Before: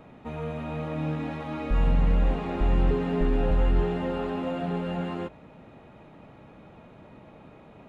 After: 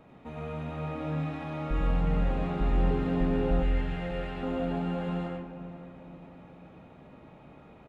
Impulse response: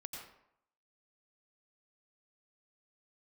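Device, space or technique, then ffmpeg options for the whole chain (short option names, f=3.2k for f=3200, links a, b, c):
bathroom: -filter_complex "[1:a]atrim=start_sample=2205[a];[0:a][a]afir=irnorm=-1:irlink=0,asettb=1/sr,asplit=3[b][c][d];[b]atrim=end=3.624[e];[c]atrim=start=3.62:end=4.43,asetpts=PTS-STARTPTS,afade=t=in:d=0.004:c=qsin,afade=t=out:st=0.806:d=0.004:c=qsin,equalizer=f=125:t=o:w=1:g=-5,equalizer=f=250:t=o:w=1:g=-9,equalizer=f=1k:t=o:w=1:g=-8,equalizer=f=2k:t=o:w=1:g=6[f];[d]atrim=start=4.426[g];[e][f]acrossfade=d=0.004:c1=hsin:c2=qsin[h];[h][g]acrossfade=d=0.004:c1=qsin:c2=hsin,asplit=2[i][j];[j]adelay=485,lowpass=f=1.1k:p=1,volume=-10.5dB,asplit=2[k][l];[l]adelay=485,lowpass=f=1.1k:p=1,volume=0.49,asplit=2[m][n];[n]adelay=485,lowpass=f=1.1k:p=1,volume=0.49,asplit=2[o][p];[p]adelay=485,lowpass=f=1.1k:p=1,volume=0.49,asplit=2[q][r];[r]adelay=485,lowpass=f=1.1k:p=1,volume=0.49[s];[i][k][m][o][q][s]amix=inputs=6:normalize=0"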